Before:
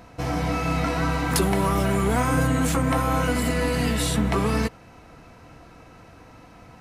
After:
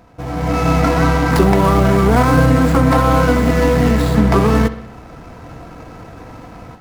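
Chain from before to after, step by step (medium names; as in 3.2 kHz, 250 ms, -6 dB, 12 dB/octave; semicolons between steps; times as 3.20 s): median filter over 15 samples; level rider gain up to 13 dB; on a send: bucket-brigade echo 63 ms, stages 2048, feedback 60%, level -15 dB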